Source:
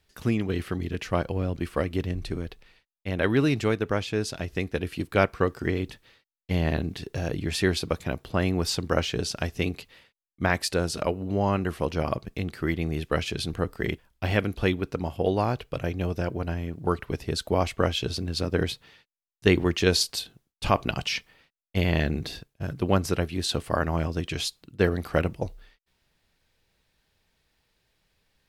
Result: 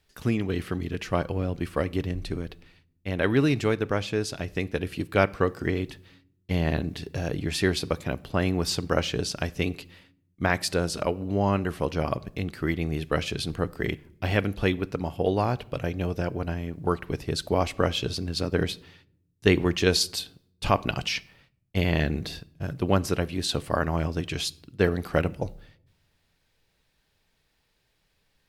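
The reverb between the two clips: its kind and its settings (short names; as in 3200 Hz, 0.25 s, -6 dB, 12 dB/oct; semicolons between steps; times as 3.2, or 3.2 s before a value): shoebox room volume 1900 m³, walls furnished, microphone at 0.3 m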